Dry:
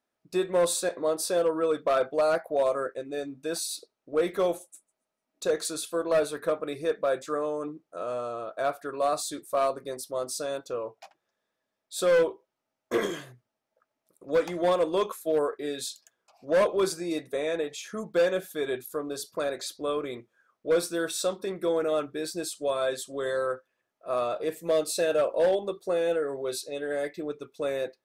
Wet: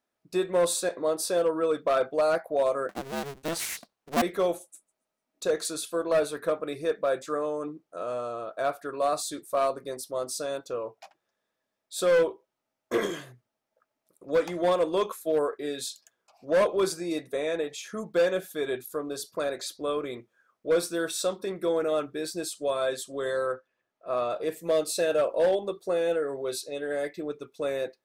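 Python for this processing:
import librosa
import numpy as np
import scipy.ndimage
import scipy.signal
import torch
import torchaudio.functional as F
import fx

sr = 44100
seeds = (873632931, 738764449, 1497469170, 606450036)

y = fx.cycle_switch(x, sr, every=2, mode='inverted', at=(2.89, 4.22))
y = fx.air_absorb(y, sr, metres=63.0, at=(23.52, 24.3))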